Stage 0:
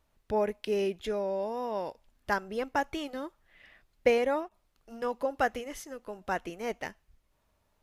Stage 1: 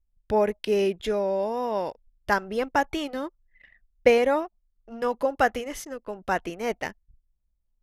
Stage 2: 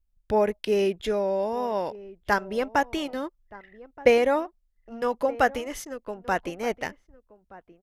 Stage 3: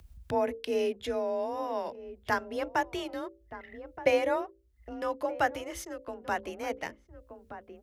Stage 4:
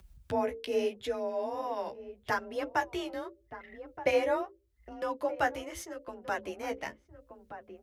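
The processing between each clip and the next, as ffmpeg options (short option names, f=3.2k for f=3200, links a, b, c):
-af "anlmdn=0.001,volume=6dB"
-filter_complex "[0:a]asplit=2[a][b];[b]adelay=1224,volume=-19dB,highshelf=f=4k:g=-27.6[c];[a][c]amix=inputs=2:normalize=0"
-af "acompressor=mode=upward:threshold=-28dB:ratio=2.5,bandreject=f=60:t=h:w=6,bandreject=f=120:t=h:w=6,bandreject=f=180:t=h:w=6,bandreject=f=240:t=h:w=6,bandreject=f=300:t=h:w=6,bandreject=f=360:t=h:w=6,bandreject=f=420:t=h:w=6,bandreject=f=480:t=h:w=6,bandreject=f=540:t=h:w=6,afreqshift=34,volume=-5.5dB"
-af "flanger=delay=5.2:depth=10:regen=18:speed=0.81:shape=sinusoidal,volume=2dB"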